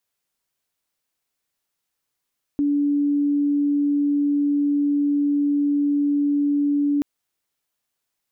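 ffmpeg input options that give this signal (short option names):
-f lavfi -i "sine=f=288:d=4.43:r=44100,volume=1.06dB"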